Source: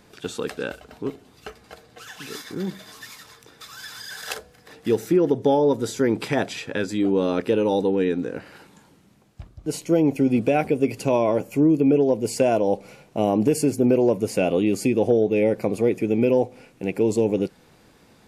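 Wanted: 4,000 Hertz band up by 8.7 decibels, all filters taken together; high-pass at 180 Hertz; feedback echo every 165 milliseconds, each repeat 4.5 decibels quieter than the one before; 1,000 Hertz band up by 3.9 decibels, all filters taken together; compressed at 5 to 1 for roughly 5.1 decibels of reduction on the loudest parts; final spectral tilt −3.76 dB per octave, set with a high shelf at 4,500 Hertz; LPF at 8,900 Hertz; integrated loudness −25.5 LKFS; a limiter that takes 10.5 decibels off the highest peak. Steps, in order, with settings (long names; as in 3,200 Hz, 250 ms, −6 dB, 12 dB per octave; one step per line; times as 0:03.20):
high-pass filter 180 Hz
low-pass filter 8,900 Hz
parametric band 1,000 Hz +5 dB
parametric band 4,000 Hz +8 dB
high-shelf EQ 4,500 Hz +5.5 dB
downward compressor 5 to 1, threshold −19 dBFS
brickwall limiter −16.5 dBFS
repeating echo 165 ms, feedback 60%, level −4.5 dB
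level +0.5 dB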